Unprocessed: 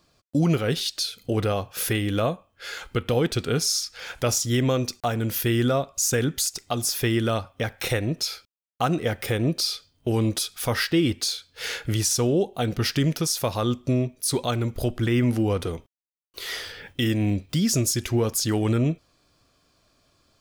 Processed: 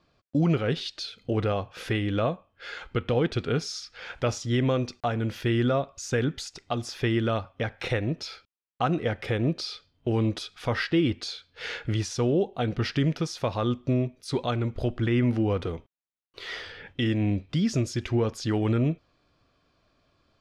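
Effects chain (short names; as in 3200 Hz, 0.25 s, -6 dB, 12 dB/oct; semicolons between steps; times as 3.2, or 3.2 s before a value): LPF 3400 Hz 12 dB/oct; gain -2 dB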